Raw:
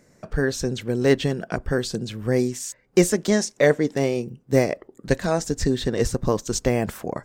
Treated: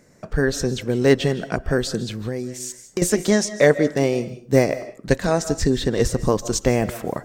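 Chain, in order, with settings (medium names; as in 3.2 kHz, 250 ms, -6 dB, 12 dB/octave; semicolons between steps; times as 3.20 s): reverberation RT60 0.35 s, pre-delay 115 ms, DRR 14 dB; 2.22–3.02 s: compression 4:1, threshold -28 dBFS, peak gain reduction 14 dB; trim +2.5 dB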